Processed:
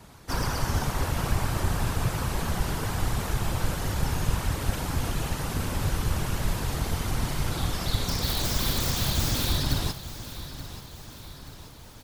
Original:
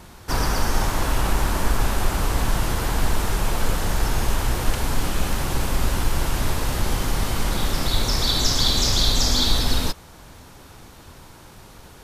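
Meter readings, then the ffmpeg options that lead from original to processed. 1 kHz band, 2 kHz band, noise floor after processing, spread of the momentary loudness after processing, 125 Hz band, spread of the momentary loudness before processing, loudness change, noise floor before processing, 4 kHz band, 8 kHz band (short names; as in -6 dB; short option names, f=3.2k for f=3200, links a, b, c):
-6.0 dB, -5.5 dB, -45 dBFS, 14 LU, -1.5 dB, 7 LU, -5.5 dB, -45 dBFS, -8.5 dB, -6.0 dB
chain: -filter_complex "[0:a]afftfilt=real='hypot(re,im)*cos(2*PI*random(0))':imag='hypot(re,im)*sin(2*PI*random(1))':win_size=512:overlap=0.75,acrossover=split=290|1000|2800[a][b][c][d];[d]aeval=exprs='(mod(20*val(0)+1,2)-1)/20':c=same[e];[a][b][c][e]amix=inputs=4:normalize=0,aecho=1:1:880|1760|2640|3520|4400:0.2|0.104|0.054|0.0281|0.0146"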